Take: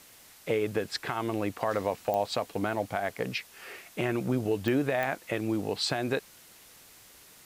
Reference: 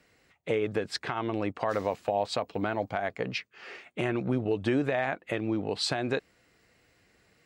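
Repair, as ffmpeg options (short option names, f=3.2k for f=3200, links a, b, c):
-af "adeclick=t=4,afwtdn=0.0022"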